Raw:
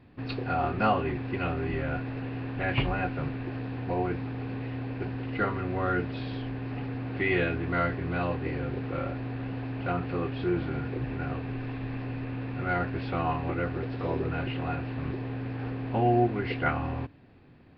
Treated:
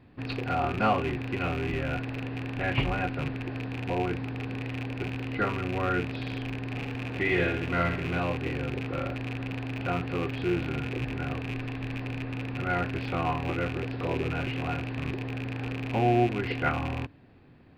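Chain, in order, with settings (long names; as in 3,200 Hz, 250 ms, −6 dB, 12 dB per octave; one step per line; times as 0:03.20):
loose part that buzzes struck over −32 dBFS, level −26 dBFS
0:06.64–0:08.18: flutter between parallel walls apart 11.8 metres, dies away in 0.55 s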